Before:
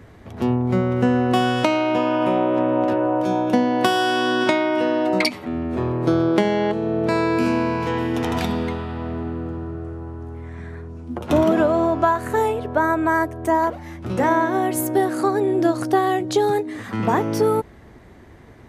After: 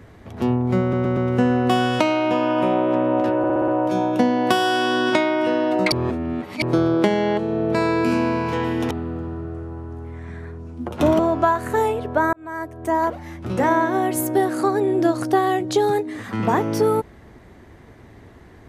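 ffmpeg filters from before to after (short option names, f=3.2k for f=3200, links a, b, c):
-filter_complex "[0:a]asplit=14[a][b][c][d][e][f][g][h][i][j][k][l][m][n];[a]atrim=end=0.932[o];[b]atrim=start=0.808:end=0.932[p];[c]atrim=start=0.808:end=0.932[q];[d]atrim=start=0.808:end=3.082[r];[e]atrim=start=3.018:end=3.082[s];[f]atrim=start=3.018:end=3.082[t];[g]atrim=start=3.018:end=3.082[u];[h]atrim=start=3.018:end=3.082[v];[i]atrim=start=3.018:end=5.262[w];[j]atrim=start=5.258:end=5.962,asetpts=PTS-STARTPTS,areverse[x];[k]atrim=start=5.958:end=8.252[y];[l]atrim=start=9.208:end=11.492[z];[m]atrim=start=11.788:end=12.93,asetpts=PTS-STARTPTS,afade=t=out:st=1.138:d=0.004:c=hsin[aa];[n]atrim=start=12.93,asetpts=PTS-STARTPTS,afade=t=in:d=0.76[ab];[o][p]acrossfade=d=0.004:c1=hsin:c2=hsin[ac];[ac][q]acrossfade=d=0.004:c1=hsin:c2=hsin[ad];[ad][r]acrossfade=d=0.004:c1=hsin:c2=hsin[ae];[ae][s]acrossfade=d=0.004:c1=hsin:c2=hsin[af];[af][t]acrossfade=d=0.004:c1=hsin:c2=hsin[ag];[ag][u]acrossfade=d=0.004:c1=hsin:c2=hsin[ah];[ah][v]acrossfade=d=0.004:c1=hsin:c2=hsin[ai];[ai][w]acrossfade=d=0.004:c1=hsin:c2=hsin[aj];[aj][x]acrossfade=d=0.004:c1=hsin:c2=hsin[ak];[ak][y]acrossfade=d=0.004:c1=hsin:c2=hsin[al];[al][z]acrossfade=d=0.004:c1=hsin:c2=hsin[am];[aa][ab]concat=n=2:v=0:a=1[an];[am][an]acrossfade=d=0.004:c1=hsin:c2=hsin"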